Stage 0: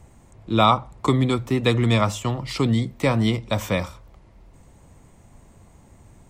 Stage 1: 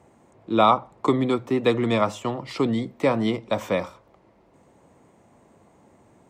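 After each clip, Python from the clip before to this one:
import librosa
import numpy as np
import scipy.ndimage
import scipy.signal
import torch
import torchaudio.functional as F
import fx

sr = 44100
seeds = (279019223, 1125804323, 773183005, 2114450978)

y = scipy.signal.sosfilt(scipy.signal.butter(2, 360.0, 'highpass', fs=sr, output='sos'), x)
y = fx.tilt_eq(y, sr, slope=-3.0)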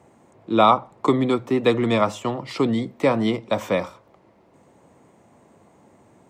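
y = scipy.signal.sosfilt(scipy.signal.butter(2, 75.0, 'highpass', fs=sr, output='sos'), x)
y = F.gain(torch.from_numpy(y), 2.0).numpy()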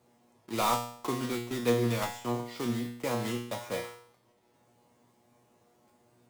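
y = fx.block_float(x, sr, bits=3)
y = fx.comb_fb(y, sr, f0_hz=120.0, decay_s=0.59, harmonics='all', damping=0.0, mix_pct=90)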